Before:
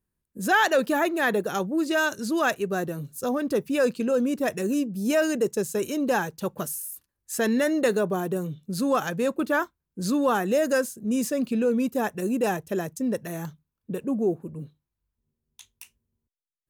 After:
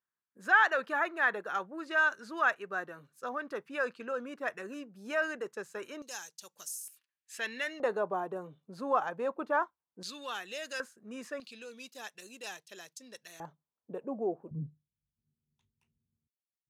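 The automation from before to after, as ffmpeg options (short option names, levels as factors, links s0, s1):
-af "asetnsamples=n=441:p=0,asendcmd='6.02 bandpass f 6100;6.88 bandpass f 2500;7.8 bandpass f 910;10.03 bandpass f 3400;10.8 bandpass f 1400;11.4 bandpass f 4200;13.4 bandpass f 740;14.51 bandpass f 150',bandpass=f=1400:t=q:w=1.8:csg=0"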